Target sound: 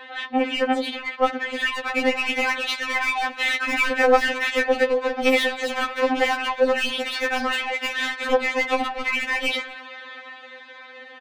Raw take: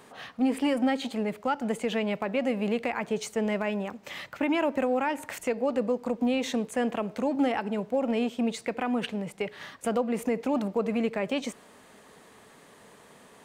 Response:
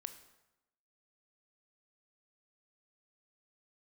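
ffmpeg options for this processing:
-filter_complex "[0:a]adynamicequalizer=threshold=0.0112:dfrequency=230:dqfactor=3.4:tfrequency=230:tqfactor=3.4:attack=5:release=100:ratio=0.375:range=2:mode=boostabove:tftype=bell,acrossover=split=630[link_01][link_02];[link_01]alimiter=level_in=3dB:limit=-24dB:level=0:latency=1:release=107,volume=-3dB[link_03];[link_02]dynaudnorm=framelen=500:gausssize=11:maxgain=13dB[link_04];[link_03][link_04]amix=inputs=2:normalize=0,highpass=120,equalizer=frequency=250:width_type=q:width=4:gain=-7,equalizer=frequency=370:width_type=q:width=4:gain=7,equalizer=frequency=900:width_type=q:width=4:gain=-4,equalizer=frequency=1700:width_type=q:width=4:gain=7,equalizer=frequency=2400:width_type=q:width=4:gain=5,equalizer=frequency=3600:width_type=q:width=4:gain=7,lowpass=frequency=4600:width=0.5412,lowpass=frequency=4600:width=1.3066,asplit=2[link_05][link_06];[link_06]highpass=frequency=720:poles=1,volume=31dB,asoftclip=type=tanh:threshold=-1dB[link_07];[link_05][link_07]amix=inputs=2:normalize=0,lowpass=frequency=2100:poles=1,volume=-6dB,atempo=1.2,asplit=2[link_08][link_09];[link_09]adelay=244.9,volume=-22dB,highshelf=frequency=4000:gain=-5.51[link_10];[link_08][link_10]amix=inputs=2:normalize=0,afftfilt=real='re*3.46*eq(mod(b,12),0)':imag='im*3.46*eq(mod(b,12),0)':win_size=2048:overlap=0.75,volume=-8.5dB"

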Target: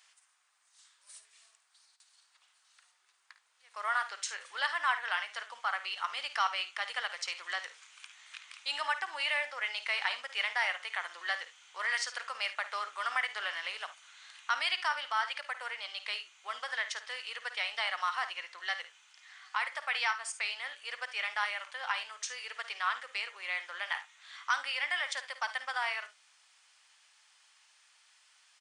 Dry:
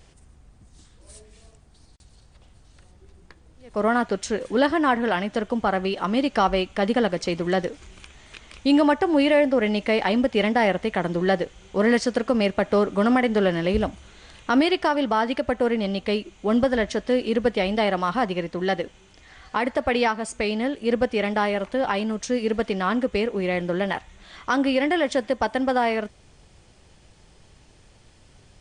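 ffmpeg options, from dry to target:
ffmpeg -i in.wav -filter_complex "[0:a]highpass=frequency=1100:width=0.5412,highpass=frequency=1100:width=1.3066,asplit=2[link_01][link_02];[link_02]aecho=0:1:53|72:0.237|0.141[link_03];[link_01][link_03]amix=inputs=2:normalize=0,volume=-4dB" out.wav

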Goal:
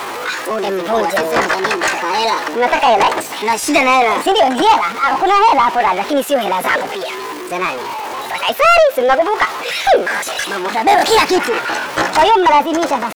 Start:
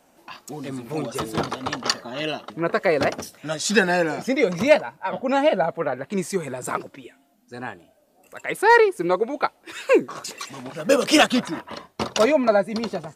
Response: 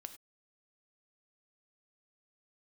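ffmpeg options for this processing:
-filter_complex "[0:a]aeval=exprs='val(0)+0.5*0.0316*sgn(val(0))':channel_layout=same,asetrate=64194,aresample=44100,atempo=0.686977,asplit=2[link_01][link_02];[link_02]highpass=frequency=720:poles=1,volume=22dB,asoftclip=type=tanh:threshold=-1dB[link_03];[link_01][link_03]amix=inputs=2:normalize=0,lowpass=frequency=2200:poles=1,volume=-6dB"

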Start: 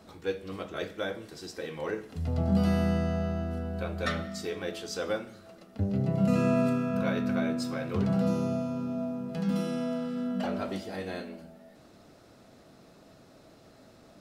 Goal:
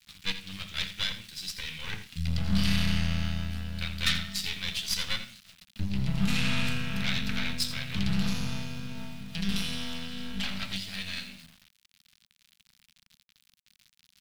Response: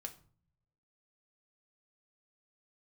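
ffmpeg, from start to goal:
-filter_complex "[0:a]acrossover=split=1800[link_01][link_02];[link_02]acontrast=69[link_03];[link_01][link_03]amix=inputs=2:normalize=0,aeval=exprs='0.251*(cos(1*acos(clip(val(0)/0.251,-1,1)))-cos(1*PI/2))+0.0501*(cos(8*acos(clip(val(0)/0.251,-1,1)))-cos(8*PI/2))':channel_layout=same,bandreject=frequency=50:width_type=h:width=6,bandreject=frequency=100:width_type=h:width=6,aecho=1:1:83:0.224,aeval=exprs='val(0)*gte(abs(val(0)),0.00531)':channel_layout=same,firequalizer=gain_entry='entry(190,0);entry(350,-21);entry(1500,-4);entry(2400,4);entry(3600,7);entry(6400,0)':delay=0.05:min_phase=1,volume=-1.5dB"

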